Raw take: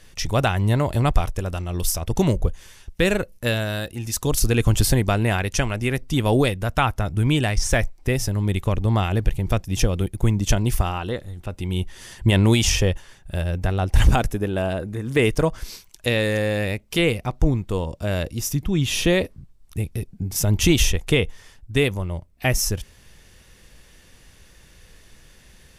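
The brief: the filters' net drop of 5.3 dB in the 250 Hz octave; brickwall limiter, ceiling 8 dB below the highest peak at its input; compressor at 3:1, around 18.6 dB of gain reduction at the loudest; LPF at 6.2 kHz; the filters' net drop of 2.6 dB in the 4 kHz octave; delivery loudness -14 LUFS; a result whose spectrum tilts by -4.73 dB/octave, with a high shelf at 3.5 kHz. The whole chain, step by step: low-pass 6.2 kHz; peaking EQ 250 Hz -8 dB; treble shelf 3.5 kHz +6.5 dB; peaking EQ 4 kHz -7.5 dB; compression 3:1, threshold -37 dBFS; trim +25 dB; peak limiter -2.5 dBFS

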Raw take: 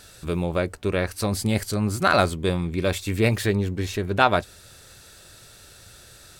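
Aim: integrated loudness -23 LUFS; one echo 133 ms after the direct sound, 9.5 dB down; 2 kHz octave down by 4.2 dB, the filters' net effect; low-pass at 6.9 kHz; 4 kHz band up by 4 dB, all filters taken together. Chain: low-pass 6.9 kHz; peaking EQ 2 kHz -8 dB; peaking EQ 4 kHz +7 dB; delay 133 ms -9.5 dB; trim +0.5 dB

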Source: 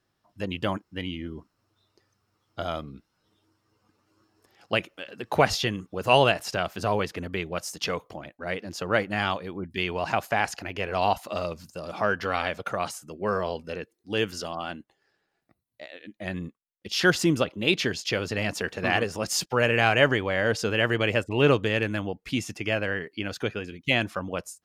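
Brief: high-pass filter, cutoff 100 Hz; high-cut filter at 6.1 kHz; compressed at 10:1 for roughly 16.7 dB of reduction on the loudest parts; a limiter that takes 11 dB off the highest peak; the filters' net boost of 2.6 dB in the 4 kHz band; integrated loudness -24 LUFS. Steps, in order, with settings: high-pass 100 Hz; low-pass 6.1 kHz; peaking EQ 4 kHz +4.5 dB; compression 10:1, threshold -31 dBFS; trim +15 dB; peak limiter -11 dBFS

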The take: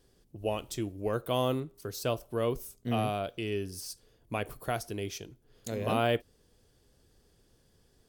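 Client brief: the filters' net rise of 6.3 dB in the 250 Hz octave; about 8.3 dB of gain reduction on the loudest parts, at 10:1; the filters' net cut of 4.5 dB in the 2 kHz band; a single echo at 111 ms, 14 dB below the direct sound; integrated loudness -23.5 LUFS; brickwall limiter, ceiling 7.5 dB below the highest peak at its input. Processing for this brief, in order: peaking EQ 250 Hz +7.5 dB; peaking EQ 2 kHz -6.5 dB; compression 10:1, threshold -29 dBFS; peak limiter -28 dBFS; delay 111 ms -14 dB; trim +15.5 dB

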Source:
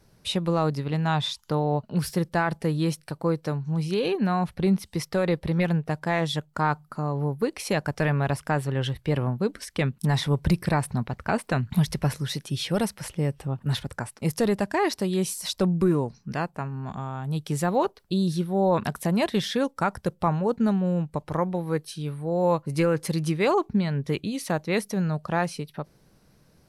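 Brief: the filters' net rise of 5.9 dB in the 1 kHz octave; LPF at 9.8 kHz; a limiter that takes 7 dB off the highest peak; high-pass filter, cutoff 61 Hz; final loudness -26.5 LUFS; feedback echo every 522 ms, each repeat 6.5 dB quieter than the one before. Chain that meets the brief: high-pass 61 Hz; low-pass 9.8 kHz; peaking EQ 1 kHz +7.5 dB; peak limiter -14 dBFS; feedback delay 522 ms, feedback 47%, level -6.5 dB; trim -1 dB

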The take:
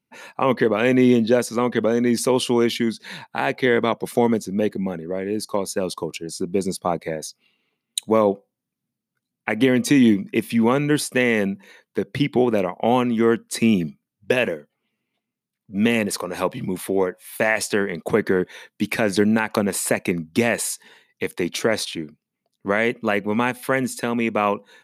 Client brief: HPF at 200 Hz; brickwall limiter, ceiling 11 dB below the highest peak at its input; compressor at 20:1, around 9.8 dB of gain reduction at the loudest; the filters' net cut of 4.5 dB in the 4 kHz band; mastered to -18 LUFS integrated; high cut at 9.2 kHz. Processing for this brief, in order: high-pass 200 Hz; low-pass 9.2 kHz; peaking EQ 4 kHz -6 dB; compression 20:1, threshold -22 dBFS; trim +13 dB; peak limiter -6 dBFS

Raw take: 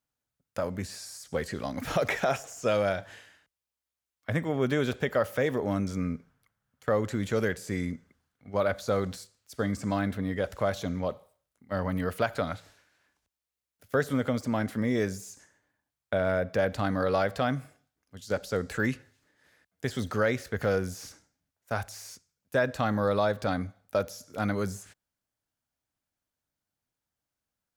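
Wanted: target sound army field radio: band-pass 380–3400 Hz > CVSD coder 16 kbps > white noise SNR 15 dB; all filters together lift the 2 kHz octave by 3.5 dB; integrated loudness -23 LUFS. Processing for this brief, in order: band-pass 380–3400 Hz; peaking EQ 2 kHz +5 dB; CVSD coder 16 kbps; white noise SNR 15 dB; trim +9.5 dB

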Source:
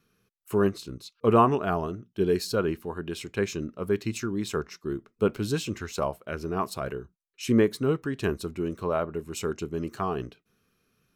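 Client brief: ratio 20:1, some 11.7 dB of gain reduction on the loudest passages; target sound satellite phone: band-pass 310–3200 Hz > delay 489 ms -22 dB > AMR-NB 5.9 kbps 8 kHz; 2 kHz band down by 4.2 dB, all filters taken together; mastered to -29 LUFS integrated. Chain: peaking EQ 2 kHz -5.5 dB; compression 20:1, threshold -27 dBFS; band-pass 310–3200 Hz; delay 489 ms -22 dB; trim +9 dB; AMR-NB 5.9 kbps 8 kHz

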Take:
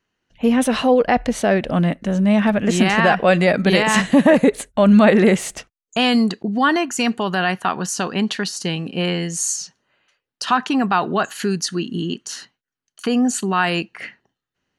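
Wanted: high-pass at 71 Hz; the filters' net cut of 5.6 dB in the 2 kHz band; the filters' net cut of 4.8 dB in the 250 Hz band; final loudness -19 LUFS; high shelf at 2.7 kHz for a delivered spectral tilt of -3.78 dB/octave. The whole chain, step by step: high-pass 71 Hz; peaking EQ 250 Hz -6 dB; peaking EQ 2 kHz -9 dB; treble shelf 2.7 kHz +4 dB; trim +2 dB

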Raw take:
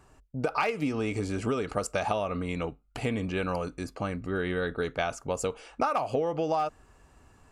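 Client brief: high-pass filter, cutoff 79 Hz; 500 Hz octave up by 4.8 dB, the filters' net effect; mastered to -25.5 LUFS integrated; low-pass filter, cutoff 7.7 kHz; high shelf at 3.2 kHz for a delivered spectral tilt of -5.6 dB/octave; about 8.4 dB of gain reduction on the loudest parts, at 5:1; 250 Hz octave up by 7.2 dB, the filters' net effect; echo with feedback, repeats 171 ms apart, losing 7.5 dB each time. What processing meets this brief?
high-pass 79 Hz; low-pass 7.7 kHz; peaking EQ 250 Hz +8 dB; peaking EQ 500 Hz +3.5 dB; treble shelf 3.2 kHz +4.5 dB; compression 5:1, threshold -27 dBFS; feedback delay 171 ms, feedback 42%, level -7.5 dB; trim +6 dB

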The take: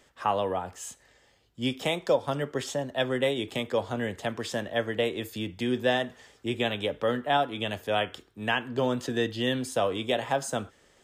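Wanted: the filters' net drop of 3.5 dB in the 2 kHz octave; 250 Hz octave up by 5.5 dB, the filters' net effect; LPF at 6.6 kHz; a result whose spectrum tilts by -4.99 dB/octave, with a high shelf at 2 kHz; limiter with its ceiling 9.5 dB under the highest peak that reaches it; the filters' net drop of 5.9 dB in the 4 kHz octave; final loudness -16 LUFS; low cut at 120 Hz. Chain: high-pass 120 Hz; low-pass 6.6 kHz; peaking EQ 250 Hz +6.5 dB; treble shelf 2 kHz +3 dB; peaking EQ 2 kHz -4 dB; peaking EQ 4 kHz -9 dB; trim +15 dB; peak limiter -5.5 dBFS

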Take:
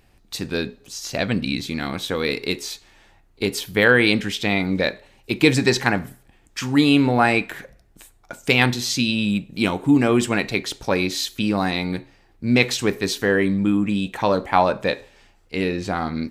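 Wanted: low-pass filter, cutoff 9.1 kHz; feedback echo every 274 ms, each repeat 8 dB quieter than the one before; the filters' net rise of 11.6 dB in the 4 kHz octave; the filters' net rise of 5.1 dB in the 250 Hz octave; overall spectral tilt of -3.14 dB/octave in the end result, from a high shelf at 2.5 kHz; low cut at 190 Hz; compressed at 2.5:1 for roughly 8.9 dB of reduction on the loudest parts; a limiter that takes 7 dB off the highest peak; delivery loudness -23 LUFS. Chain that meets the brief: high-pass 190 Hz; low-pass 9.1 kHz; peaking EQ 250 Hz +7.5 dB; treble shelf 2.5 kHz +6 dB; peaking EQ 4 kHz +8.5 dB; compression 2.5:1, threshold -19 dBFS; peak limiter -8.5 dBFS; feedback delay 274 ms, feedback 40%, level -8 dB; trim -1.5 dB

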